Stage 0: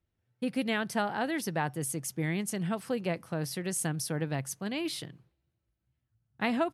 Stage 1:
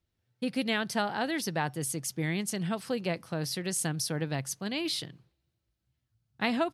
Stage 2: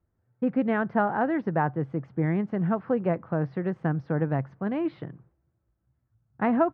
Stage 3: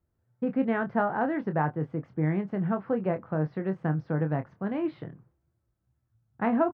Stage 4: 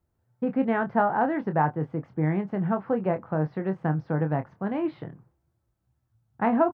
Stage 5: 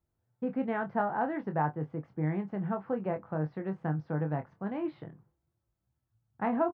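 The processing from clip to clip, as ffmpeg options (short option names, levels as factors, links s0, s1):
-af "equalizer=f=4400:w=1.2:g=7"
-af "lowpass=f=1500:w=0.5412,lowpass=f=1500:w=1.3066,volume=2.11"
-filter_complex "[0:a]asplit=2[s0][s1];[s1]adelay=26,volume=0.376[s2];[s0][s2]amix=inputs=2:normalize=0,volume=0.75"
-af "equalizer=f=850:w=2.4:g=4.5,volume=1.19"
-filter_complex "[0:a]asplit=2[s0][s1];[s1]adelay=20,volume=0.251[s2];[s0][s2]amix=inputs=2:normalize=0,volume=0.447"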